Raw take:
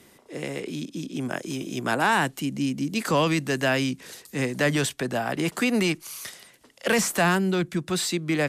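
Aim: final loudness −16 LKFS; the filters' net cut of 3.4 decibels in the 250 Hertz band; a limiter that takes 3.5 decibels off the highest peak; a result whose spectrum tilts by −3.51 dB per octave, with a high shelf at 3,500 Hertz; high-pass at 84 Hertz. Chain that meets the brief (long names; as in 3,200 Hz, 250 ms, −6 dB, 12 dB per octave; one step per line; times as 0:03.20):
high-pass filter 84 Hz
parametric band 250 Hz −4.5 dB
high-shelf EQ 3,500 Hz +8.5 dB
level +10 dB
brickwall limiter −4.5 dBFS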